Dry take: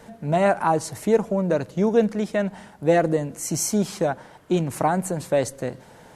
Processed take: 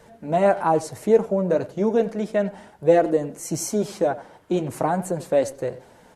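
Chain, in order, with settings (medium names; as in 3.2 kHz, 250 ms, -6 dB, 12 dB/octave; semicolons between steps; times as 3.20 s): flange 0.35 Hz, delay 1.7 ms, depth 9.4 ms, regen -44%; speakerphone echo 90 ms, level -16 dB; dynamic bell 480 Hz, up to +6 dB, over -48 dBFS, Q 0.84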